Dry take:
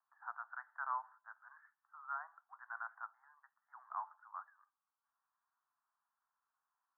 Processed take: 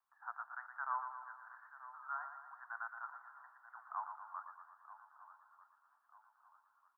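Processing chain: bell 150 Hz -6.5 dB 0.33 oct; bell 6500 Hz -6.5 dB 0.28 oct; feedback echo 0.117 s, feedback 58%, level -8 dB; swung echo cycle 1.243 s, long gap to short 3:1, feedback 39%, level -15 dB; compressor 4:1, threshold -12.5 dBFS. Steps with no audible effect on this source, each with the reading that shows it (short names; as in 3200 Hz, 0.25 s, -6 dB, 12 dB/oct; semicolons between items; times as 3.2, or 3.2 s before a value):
bell 150 Hz: input band starts at 600 Hz; bell 6500 Hz: input band ends at 1900 Hz; compressor, threshold -12.5 dBFS: input peak -27.0 dBFS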